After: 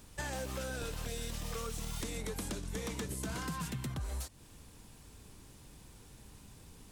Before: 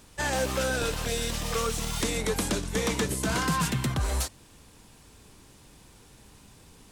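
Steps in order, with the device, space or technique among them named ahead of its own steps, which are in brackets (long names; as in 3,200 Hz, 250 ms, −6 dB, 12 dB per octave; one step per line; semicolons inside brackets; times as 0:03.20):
ASMR close-microphone chain (low-shelf EQ 210 Hz +6 dB; downward compressor 5 to 1, threshold −32 dBFS, peak gain reduction 11.5 dB; high-shelf EQ 11,000 Hz +6.5 dB)
level −5 dB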